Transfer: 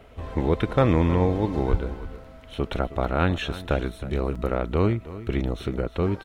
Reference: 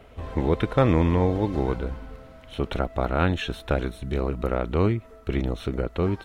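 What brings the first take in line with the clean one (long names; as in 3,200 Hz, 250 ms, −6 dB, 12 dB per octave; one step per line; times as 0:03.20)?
high-pass at the plosives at 0:01.70
repair the gap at 0:02.24/0:04.35, 5.2 ms
echo removal 317 ms −15.5 dB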